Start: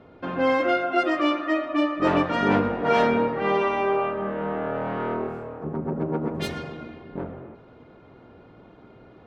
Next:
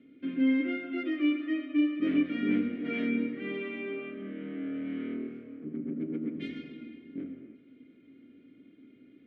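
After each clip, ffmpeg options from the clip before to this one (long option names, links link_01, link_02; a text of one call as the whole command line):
ffmpeg -i in.wav -filter_complex "[0:a]asplit=3[link_01][link_02][link_03];[link_01]bandpass=frequency=270:width_type=q:width=8,volume=0dB[link_04];[link_02]bandpass=frequency=2290:width_type=q:width=8,volume=-6dB[link_05];[link_03]bandpass=frequency=3010:width_type=q:width=8,volume=-9dB[link_06];[link_04][link_05][link_06]amix=inputs=3:normalize=0,acrossover=split=2700[link_07][link_08];[link_08]acompressor=threshold=-57dB:ratio=4:attack=1:release=60[link_09];[link_07][link_09]amix=inputs=2:normalize=0,volume=4dB" out.wav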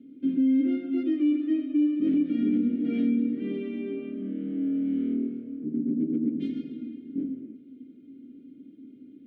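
ffmpeg -i in.wav -af "equalizer=frequency=250:width_type=o:width=1:gain=10,equalizer=frequency=1000:width_type=o:width=1:gain=-11,equalizer=frequency=2000:width_type=o:width=1:gain=-10,alimiter=limit=-17.5dB:level=0:latency=1:release=57" out.wav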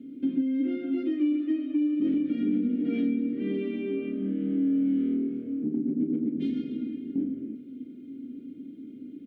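ffmpeg -i in.wav -filter_complex "[0:a]acompressor=threshold=-34dB:ratio=2,asplit=2[link_01][link_02];[link_02]adelay=36,volume=-9dB[link_03];[link_01][link_03]amix=inputs=2:normalize=0,volume=5.5dB" out.wav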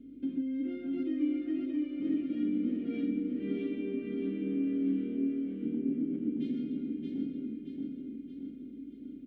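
ffmpeg -i in.wav -af "aeval=exprs='val(0)+0.001*(sin(2*PI*50*n/s)+sin(2*PI*2*50*n/s)/2+sin(2*PI*3*50*n/s)/3+sin(2*PI*4*50*n/s)/4+sin(2*PI*5*50*n/s)/5)':channel_layout=same,aecho=1:1:625|1250|1875|2500|3125|3750|4375:0.668|0.341|0.174|0.0887|0.0452|0.0231|0.0118,volume=-7dB" out.wav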